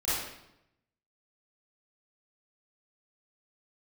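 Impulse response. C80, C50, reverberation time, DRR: 2.0 dB, -3.0 dB, 0.85 s, -12.5 dB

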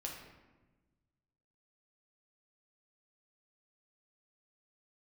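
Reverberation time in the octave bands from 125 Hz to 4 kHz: 2.0, 1.7, 1.3, 1.1, 1.0, 0.75 s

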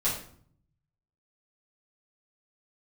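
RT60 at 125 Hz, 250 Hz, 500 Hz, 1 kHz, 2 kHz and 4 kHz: 1.3, 0.85, 0.60, 0.55, 0.45, 0.40 s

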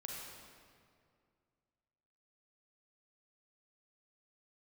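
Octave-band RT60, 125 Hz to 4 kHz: 2.6, 2.5, 2.3, 2.1, 1.8, 1.5 s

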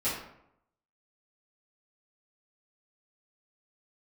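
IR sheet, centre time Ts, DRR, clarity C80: 48 ms, -13.0 dB, 6.5 dB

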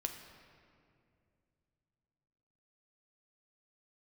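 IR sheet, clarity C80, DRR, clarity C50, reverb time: 8.0 dB, 4.0 dB, 7.0 dB, 2.4 s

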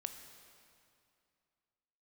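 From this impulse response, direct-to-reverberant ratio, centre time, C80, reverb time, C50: 6.5 dB, 34 ms, 8.5 dB, 2.5 s, 8.0 dB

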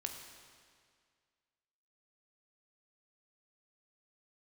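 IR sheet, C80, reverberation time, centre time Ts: 6.5 dB, 2.0 s, 46 ms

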